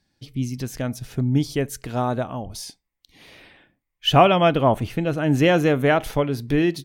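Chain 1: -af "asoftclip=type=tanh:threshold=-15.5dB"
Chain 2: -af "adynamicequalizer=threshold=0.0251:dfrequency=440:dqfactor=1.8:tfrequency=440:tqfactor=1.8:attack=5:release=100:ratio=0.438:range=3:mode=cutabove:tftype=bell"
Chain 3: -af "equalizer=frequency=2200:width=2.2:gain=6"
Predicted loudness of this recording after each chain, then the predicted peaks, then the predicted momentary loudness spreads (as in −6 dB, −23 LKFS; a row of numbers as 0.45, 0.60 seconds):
−24.5, −22.0, −20.5 LKFS; −15.5, −4.0, −2.5 dBFS; 10, 14, 14 LU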